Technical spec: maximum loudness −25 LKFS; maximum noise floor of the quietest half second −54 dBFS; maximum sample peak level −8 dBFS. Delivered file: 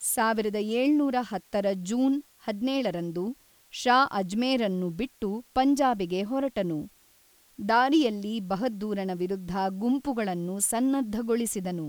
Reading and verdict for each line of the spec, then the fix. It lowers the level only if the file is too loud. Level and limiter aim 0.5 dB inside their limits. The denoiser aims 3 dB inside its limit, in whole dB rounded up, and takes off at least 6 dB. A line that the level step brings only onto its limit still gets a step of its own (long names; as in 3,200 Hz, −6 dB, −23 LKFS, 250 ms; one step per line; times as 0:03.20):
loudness −27.5 LKFS: in spec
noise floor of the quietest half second −61 dBFS: in spec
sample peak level −10.5 dBFS: in spec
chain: no processing needed